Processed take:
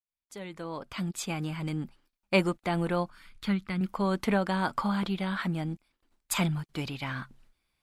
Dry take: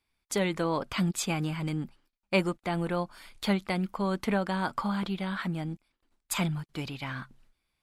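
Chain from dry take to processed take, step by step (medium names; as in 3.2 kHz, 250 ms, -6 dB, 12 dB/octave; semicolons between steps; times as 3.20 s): fade-in on the opening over 2.28 s; 3.10–3.81 s: FFT filter 170 Hz 0 dB, 710 Hz -16 dB, 1.3 kHz -3 dB, 7.6 kHz -11 dB; trim +1.5 dB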